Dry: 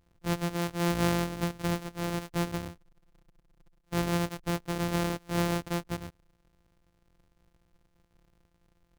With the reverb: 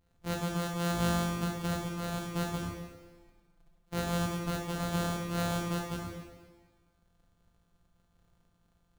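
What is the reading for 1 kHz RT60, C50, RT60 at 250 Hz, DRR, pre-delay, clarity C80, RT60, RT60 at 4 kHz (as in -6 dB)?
1.4 s, 1.5 dB, 1.4 s, -1.5 dB, 4 ms, 4.0 dB, 1.4 s, 1.3 s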